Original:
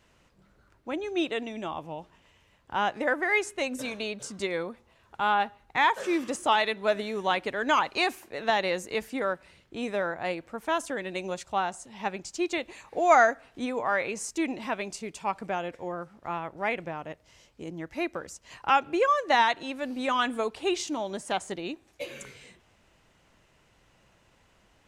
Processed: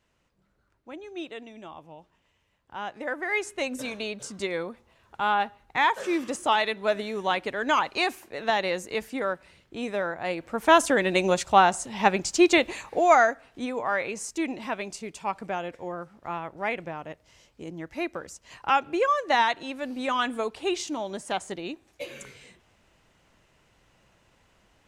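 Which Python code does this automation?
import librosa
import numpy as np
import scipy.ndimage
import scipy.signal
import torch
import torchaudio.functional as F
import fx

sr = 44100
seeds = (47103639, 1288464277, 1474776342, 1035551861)

y = fx.gain(x, sr, db=fx.line((2.78, -8.5), (3.59, 0.5), (10.26, 0.5), (10.71, 10.5), (12.73, 10.5), (13.18, 0.0)))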